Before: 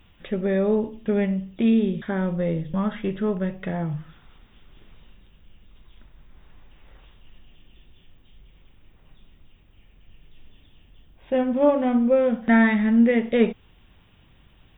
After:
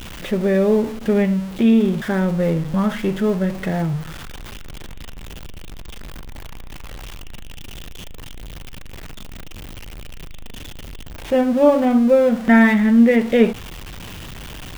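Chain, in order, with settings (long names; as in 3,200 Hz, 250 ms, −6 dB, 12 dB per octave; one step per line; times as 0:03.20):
converter with a step at zero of −33.5 dBFS
level +4.5 dB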